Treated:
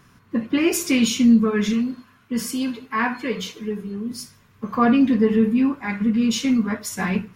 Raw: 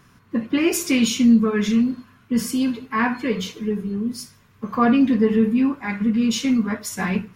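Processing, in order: 1.73–4.11 s: bass shelf 300 Hz -6.5 dB

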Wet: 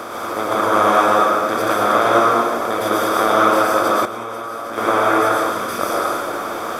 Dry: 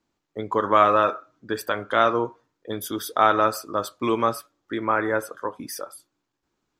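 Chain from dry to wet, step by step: spectral levelling over time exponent 0.2; 5.34–5.79 s: peaking EQ 670 Hz -11.5 dB 1.7 oct; reverberation RT60 1.2 s, pre-delay 98 ms, DRR -4 dB; 4.05–4.78 s: level held to a coarse grid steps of 21 dB; trim -6.5 dB

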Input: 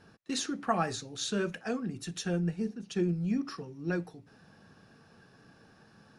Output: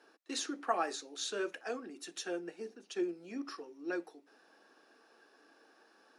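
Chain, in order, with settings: Chebyshev high-pass 300 Hz, order 4; trim -2.5 dB

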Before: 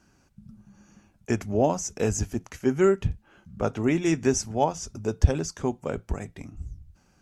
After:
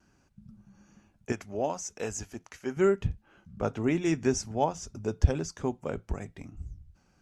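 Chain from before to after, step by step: treble shelf 9.6 kHz -8 dB; vibrato 1.1 Hz 23 cents; 1.32–2.77 s: bass shelf 380 Hz -12 dB; trim -3.5 dB

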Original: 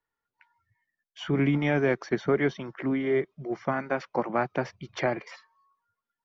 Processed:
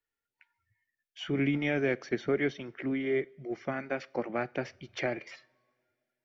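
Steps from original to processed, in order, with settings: fifteen-band graphic EQ 160 Hz -6 dB, 1 kHz -11 dB, 2.5 kHz +4 dB; two-slope reverb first 0.43 s, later 2.7 s, from -21 dB, DRR 19.5 dB; trim -3 dB

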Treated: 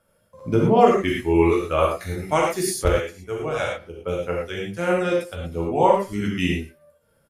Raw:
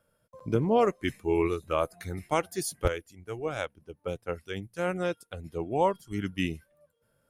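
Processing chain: speakerphone echo 110 ms, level -19 dB; gated-style reverb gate 140 ms flat, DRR -3.5 dB; trim +3.5 dB; AAC 96 kbps 32 kHz

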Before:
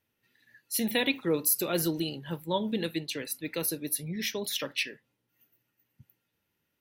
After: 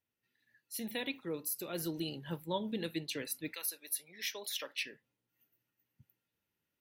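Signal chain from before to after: 3.52–4.77 s: high-pass 1.2 kHz -> 450 Hz 12 dB/octave; gain riding 0.5 s; trim -8 dB

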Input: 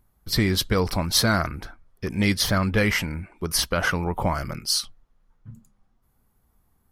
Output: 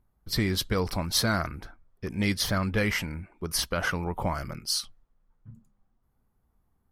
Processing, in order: tape noise reduction on one side only decoder only; trim -5 dB

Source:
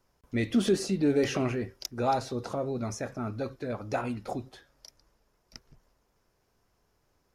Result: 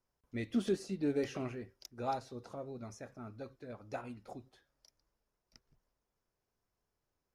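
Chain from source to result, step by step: upward expansion 1.5:1, over -35 dBFS; trim -7 dB

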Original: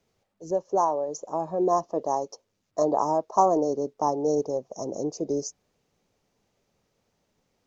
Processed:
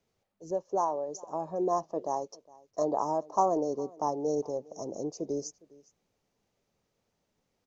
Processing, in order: delay 410 ms -23.5 dB; trim -5.5 dB

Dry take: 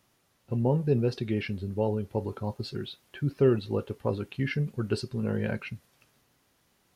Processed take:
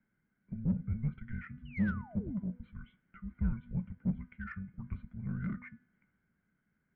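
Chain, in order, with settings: painted sound fall, 1.65–2.39 s, 500–3400 Hz -35 dBFS; cascade formant filter e; frequency shift -340 Hz; de-hum 246.1 Hz, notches 39; in parallel at -5 dB: saturation -39 dBFS, distortion -6 dB; on the sum: trim +1 dB

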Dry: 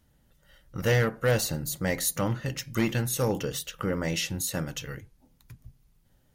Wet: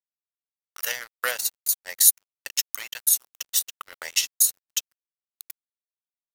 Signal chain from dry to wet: high-pass 570 Hz 24 dB/octave; tilt EQ +4.5 dB/octave; transient shaper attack +9 dB, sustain -11 dB; 1.17–1.69 s: compressor with a negative ratio -15 dBFS, ratio -0.5; crossover distortion -32.5 dBFS; tape noise reduction on one side only encoder only; trim -7 dB

